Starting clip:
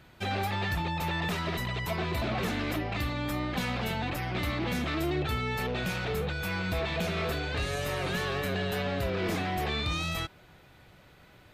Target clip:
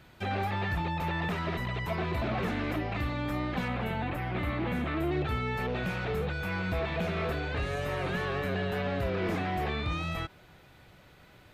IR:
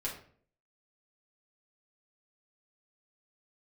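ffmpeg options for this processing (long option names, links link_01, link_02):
-filter_complex "[0:a]acrossover=split=2700[link_01][link_02];[link_02]acompressor=threshold=-51dB:ratio=4:attack=1:release=60[link_03];[link_01][link_03]amix=inputs=2:normalize=0,asettb=1/sr,asplit=3[link_04][link_05][link_06];[link_04]atrim=end=3.684[link_07];[link_05]atrim=start=3.68:end=5.12,asetpts=PTS-STARTPTS,afade=type=in:duration=0.004:curve=qsin,afade=type=out:start_time=1.436:duration=0.004:curve=qsin,equalizer=frequency=5400:width=1.7:gain=-10[link_08];[link_06]atrim=start=5.116[link_09];[link_07][link_08]acrossfade=duration=0.004:curve1=hsin:curve2=qsin[link_10];[link_10][link_09]acrossfade=duration=0.004:curve1=qsin:curve2=hsin"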